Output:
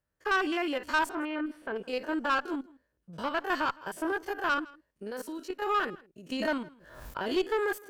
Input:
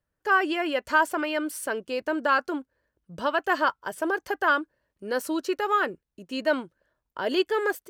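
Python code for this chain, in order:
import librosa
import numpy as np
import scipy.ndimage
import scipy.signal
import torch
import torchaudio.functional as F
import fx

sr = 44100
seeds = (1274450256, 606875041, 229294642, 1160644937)

y = fx.spec_steps(x, sr, hold_ms=50)
y = fx.dynamic_eq(y, sr, hz=600.0, q=5.7, threshold_db=-44.0, ratio=4.0, max_db=-7)
y = fx.level_steps(y, sr, step_db=12, at=(5.06, 5.62))
y = fx.tube_stage(y, sr, drive_db=20.0, bias=0.3)
y = fx.air_absorb(y, sr, metres=430.0, at=(1.09, 1.76))
y = y + 10.0 ** (-23.0 / 20.0) * np.pad(y, (int(161 * sr / 1000.0), 0))[:len(y)]
y = fx.pre_swell(y, sr, db_per_s=61.0, at=(6.3, 7.34))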